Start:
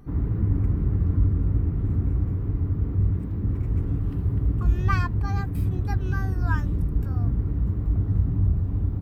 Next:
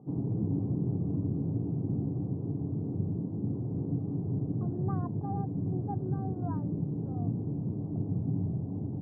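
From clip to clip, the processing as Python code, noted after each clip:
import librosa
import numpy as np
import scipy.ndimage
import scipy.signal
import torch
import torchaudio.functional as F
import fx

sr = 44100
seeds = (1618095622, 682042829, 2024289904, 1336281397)

y = scipy.signal.sosfilt(scipy.signal.ellip(3, 1.0, 50, [130.0, 790.0], 'bandpass', fs=sr, output='sos'), x)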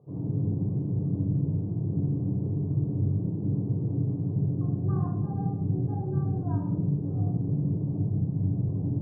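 y = fx.rider(x, sr, range_db=10, speed_s=0.5)
y = fx.room_shoebox(y, sr, seeds[0], volume_m3=2600.0, walls='furnished', distance_m=5.4)
y = F.gain(torch.from_numpy(y), -5.5).numpy()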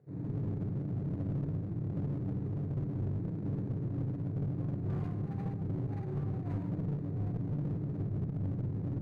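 y = scipy.ndimage.median_filter(x, 41, mode='constant')
y = fx.clip_asym(y, sr, top_db=-28.5, bottom_db=-21.5)
y = F.gain(torch.from_numpy(y), -5.5).numpy()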